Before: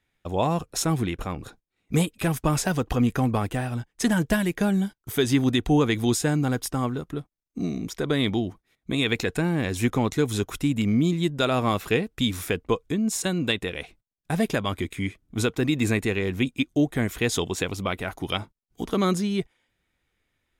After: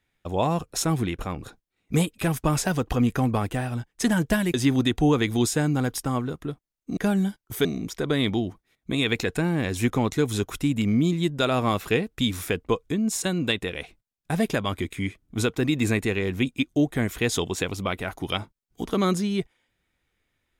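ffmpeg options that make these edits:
-filter_complex "[0:a]asplit=4[a][b][c][d];[a]atrim=end=4.542[e];[b]atrim=start=5.218:end=7.652[f];[c]atrim=start=4.538:end=5.222[g];[d]atrim=start=7.648[h];[e][f]acrossfade=d=0.004:c1=hsin:c2=hsin[i];[i][g]acrossfade=d=0.004:c1=hsin:c2=hsin[j];[j][h]acrossfade=d=0.004:c1=hsin:c2=hsin"

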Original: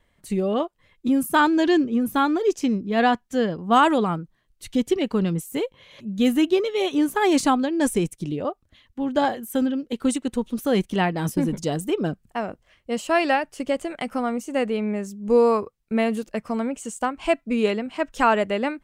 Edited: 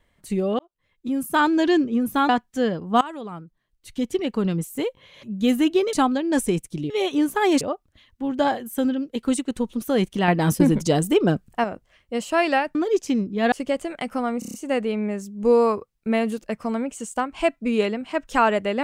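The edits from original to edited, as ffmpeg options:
-filter_complex "[0:a]asplit=16[a][b][c][d][e][f][g][h][i][j][k][l][m][n][o][p];[a]atrim=end=0.59,asetpts=PTS-STARTPTS,afade=t=out:st=0.586:d=0.004:c=hsin[q];[b]atrim=start=0.59:end=2.292,asetpts=PTS-STARTPTS,afade=t=in:d=0.93[r];[c]atrim=start=3.058:end=3.78,asetpts=PTS-STARTPTS,afade=t=out:st=0.718:d=0.004:c=hsin:silence=0.1[s];[d]atrim=start=3.78:end=6.702,asetpts=PTS-STARTPTS,afade=t=in:d=1.56:silence=0.1[t];[e]atrim=start=7.408:end=8.382[u];[f]atrim=start=6.698:end=7.412[v];[g]atrim=start=8.378:end=11.052[w];[h]atrim=start=11.048:end=12.412,asetpts=PTS-STARTPTS,volume=5.5dB[x];[i]atrim=start=12.408:end=13.522[y];[j]atrim=start=2.288:end=3.062[z];[k]atrim=start=13.518:end=14.422[aa];[l]atrim=start=14.388:end=14.422[ab];[m]atrim=start=14.388:end=14.422[ac];[n]atrim=start=14.388:end=14.422[ad];[o]atrim=start=14.388:end=14.422[ae];[p]atrim=start=14.388[af];[q][r]concat=n=2:v=0:a=1[ag];[s][t]concat=n=2:v=0:a=1[ah];[ag][ah]acrossfade=d=0.004:c1=hsin:c2=hsin[ai];[ai][u]acrossfade=d=0.004:c1=hsin:c2=hsin[aj];[aj][v]acrossfade=d=0.004:c1=hsin:c2=hsin[ak];[ak][w]acrossfade=d=0.004:c1=hsin:c2=hsin[al];[al][x]acrossfade=d=0.004:c1=hsin:c2=hsin[am];[am][y]acrossfade=d=0.004:c1=hsin:c2=hsin[an];[an][z]acrossfade=d=0.004:c1=hsin:c2=hsin[ao];[ao][aa]acrossfade=d=0.004:c1=hsin:c2=hsin[ap];[ap][ab]acrossfade=d=0.004:c1=hsin:c2=hsin[aq];[aq][ac]acrossfade=d=0.004:c1=hsin:c2=hsin[ar];[ar][ad]acrossfade=d=0.004:c1=hsin:c2=hsin[as];[as][ae]acrossfade=d=0.004:c1=hsin:c2=hsin[at];[at][af]acrossfade=d=0.004:c1=hsin:c2=hsin"

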